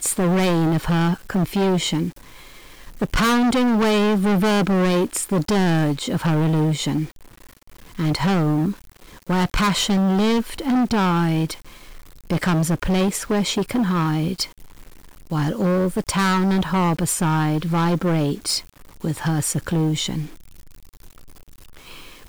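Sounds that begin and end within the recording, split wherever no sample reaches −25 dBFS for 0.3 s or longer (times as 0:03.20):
0:03.01–0:07.05
0:07.99–0:08.72
0:09.29–0:11.54
0:12.30–0:14.44
0:15.31–0:18.59
0:19.04–0:20.25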